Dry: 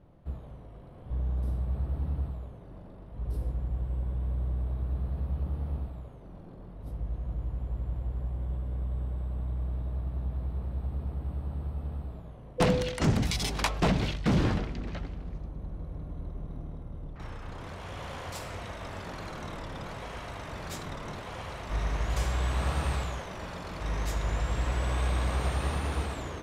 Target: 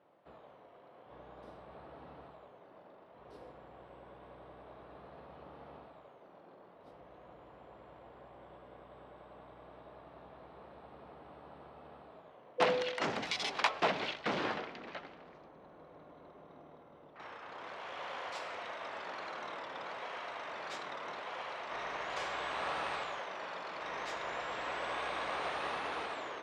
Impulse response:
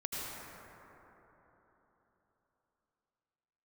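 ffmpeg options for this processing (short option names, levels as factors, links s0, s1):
-filter_complex "[0:a]highpass=540,lowpass=3800,asplit=2[s0][s1];[1:a]atrim=start_sample=2205[s2];[s1][s2]afir=irnorm=-1:irlink=0,volume=0.0596[s3];[s0][s3]amix=inputs=2:normalize=0"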